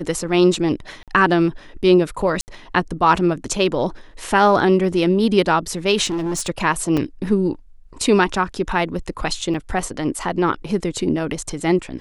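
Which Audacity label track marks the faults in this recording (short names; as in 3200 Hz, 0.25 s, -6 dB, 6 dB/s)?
1.030000	1.080000	gap 47 ms
2.410000	2.480000	gap 69 ms
6.050000	6.470000	clipped -19.5 dBFS
6.970000	6.980000	gap 5.1 ms
9.540000	9.540000	gap 4.1 ms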